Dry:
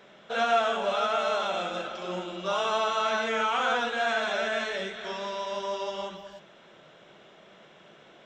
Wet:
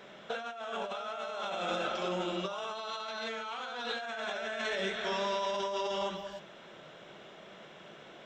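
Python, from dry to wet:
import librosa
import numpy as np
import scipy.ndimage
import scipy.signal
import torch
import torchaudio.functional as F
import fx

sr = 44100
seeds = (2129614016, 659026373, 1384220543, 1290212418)

y = fx.peak_eq(x, sr, hz=4200.0, db=13.0, octaves=0.33, at=(2.75, 4.01))
y = fx.over_compress(y, sr, threshold_db=-34.0, ratio=-1.0)
y = y * 10.0 ** (-2.5 / 20.0)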